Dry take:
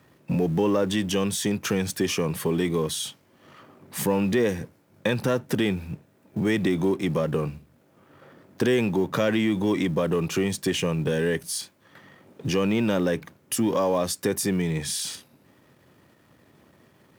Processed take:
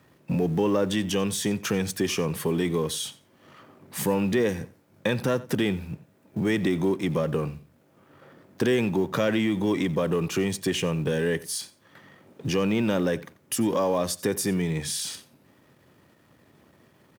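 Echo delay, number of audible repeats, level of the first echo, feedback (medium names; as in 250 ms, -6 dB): 89 ms, 2, -19.5 dB, 17%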